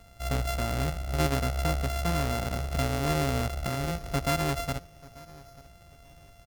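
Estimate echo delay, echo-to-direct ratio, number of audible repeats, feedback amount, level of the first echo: 888 ms, -21.5 dB, 2, 27%, -22.0 dB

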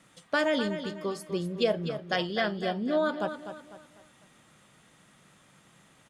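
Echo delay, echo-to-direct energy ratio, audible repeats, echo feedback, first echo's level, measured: 250 ms, -9.5 dB, 3, 38%, -10.0 dB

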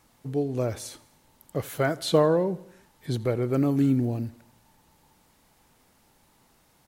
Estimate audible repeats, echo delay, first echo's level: 3, 84 ms, -21.5 dB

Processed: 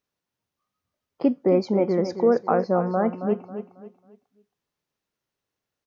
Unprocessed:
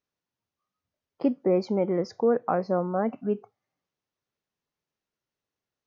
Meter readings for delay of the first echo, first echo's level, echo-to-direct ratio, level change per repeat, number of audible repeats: 272 ms, -10.0 dB, -9.5 dB, -9.5 dB, 3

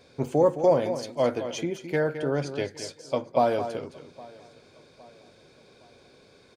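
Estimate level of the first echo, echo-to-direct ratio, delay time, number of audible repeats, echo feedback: -10.5 dB, -10.0 dB, 215 ms, 4, no regular repeats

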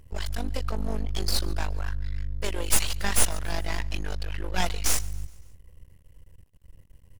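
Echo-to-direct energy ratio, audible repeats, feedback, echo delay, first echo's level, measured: -21.5 dB, 3, 53%, 140 ms, -23.0 dB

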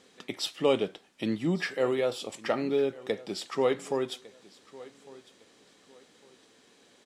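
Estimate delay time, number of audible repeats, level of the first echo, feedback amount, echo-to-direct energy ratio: 1154 ms, 2, -20.5 dB, 28%, -20.0 dB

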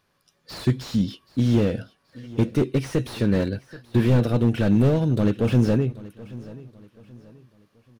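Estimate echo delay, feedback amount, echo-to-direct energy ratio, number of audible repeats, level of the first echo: 780 ms, 37%, -19.0 dB, 2, -19.5 dB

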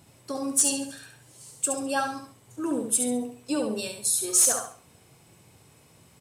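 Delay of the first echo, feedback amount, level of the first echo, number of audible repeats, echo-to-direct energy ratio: 69 ms, 32%, -5.5 dB, 3, -5.0 dB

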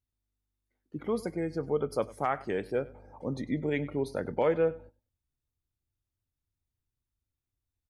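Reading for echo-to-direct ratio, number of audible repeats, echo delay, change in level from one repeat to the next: -19.5 dB, 2, 99 ms, -13.0 dB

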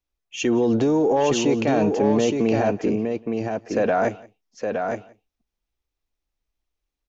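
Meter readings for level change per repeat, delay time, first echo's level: no regular repeats, 175 ms, -23.5 dB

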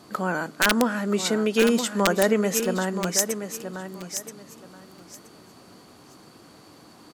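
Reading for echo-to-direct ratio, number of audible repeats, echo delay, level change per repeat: -9.0 dB, 2, 976 ms, -14.0 dB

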